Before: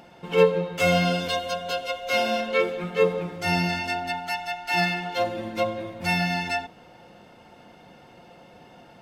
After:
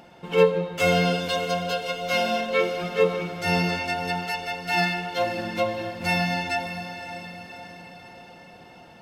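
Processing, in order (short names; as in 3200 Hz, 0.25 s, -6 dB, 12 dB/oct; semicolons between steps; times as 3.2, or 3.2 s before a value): diffused feedback echo 0.591 s, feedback 51%, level -10 dB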